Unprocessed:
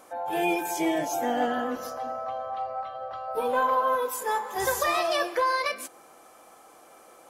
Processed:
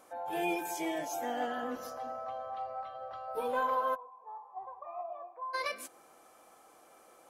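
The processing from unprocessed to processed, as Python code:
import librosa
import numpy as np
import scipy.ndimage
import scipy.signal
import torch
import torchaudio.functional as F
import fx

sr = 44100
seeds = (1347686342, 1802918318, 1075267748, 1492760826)

y = fx.low_shelf(x, sr, hz=350.0, db=-6.0, at=(0.75, 1.63))
y = fx.formant_cascade(y, sr, vowel='a', at=(3.94, 5.53), fade=0.02)
y = y * librosa.db_to_amplitude(-7.0)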